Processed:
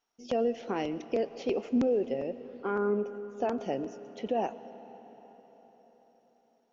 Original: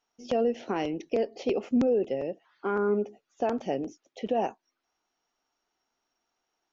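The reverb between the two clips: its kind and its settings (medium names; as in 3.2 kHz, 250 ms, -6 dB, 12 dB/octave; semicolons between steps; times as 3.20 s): algorithmic reverb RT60 4.8 s, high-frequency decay 0.75×, pre-delay 70 ms, DRR 14 dB; trim -2.5 dB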